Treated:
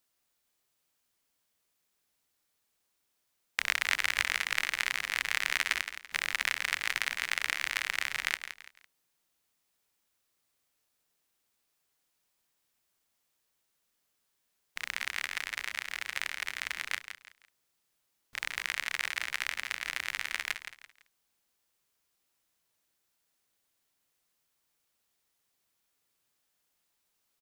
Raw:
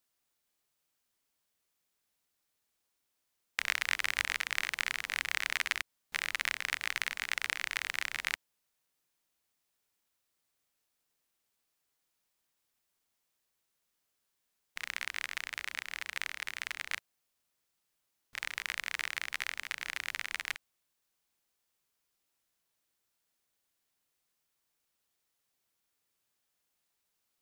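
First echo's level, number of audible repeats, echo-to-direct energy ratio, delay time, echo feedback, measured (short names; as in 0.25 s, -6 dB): -10.0 dB, 3, -9.5 dB, 0.168 s, 31%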